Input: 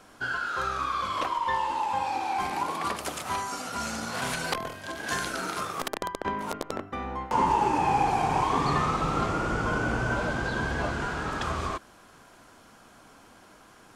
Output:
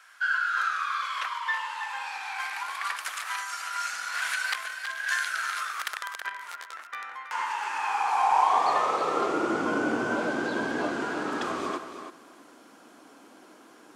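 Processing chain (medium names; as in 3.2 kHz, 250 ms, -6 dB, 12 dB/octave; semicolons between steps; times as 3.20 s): thinning echo 323 ms, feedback 15%, high-pass 150 Hz, level -9 dB; high-pass sweep 1.6 kHz -> 290 Hz, 7.71–9.58 s; 6.29–6.87 s: detune thickener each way 24 cents; trim -1.5 dB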